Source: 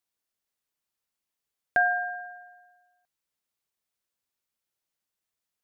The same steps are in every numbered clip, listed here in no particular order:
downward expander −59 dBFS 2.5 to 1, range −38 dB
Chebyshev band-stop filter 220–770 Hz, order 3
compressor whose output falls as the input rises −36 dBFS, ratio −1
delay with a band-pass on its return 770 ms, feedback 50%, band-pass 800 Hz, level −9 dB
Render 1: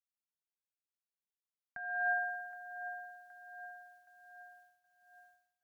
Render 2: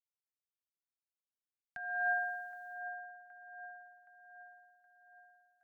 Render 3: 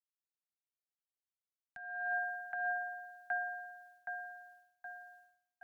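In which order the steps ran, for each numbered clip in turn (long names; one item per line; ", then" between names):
Chebyshev band-stop filter, then compressor whose output falls as the input rises, then delay with a band-pass on its return, then downward expander
Chebyshev band-stop filter, then downward expander, then compressor whose output falls as the input rises, then delay with a band-pass on its return
delay with a band-pass on its return, then downward expander, then compressor whose output falls as the input rises, then Chebyshev band-stop filter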